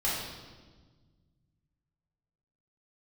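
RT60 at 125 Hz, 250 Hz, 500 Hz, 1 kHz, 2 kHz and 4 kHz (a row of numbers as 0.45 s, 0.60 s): 2.9 s, 2.2 s, 1.5 s, 1.3 s, 1.1 s, 1.2 s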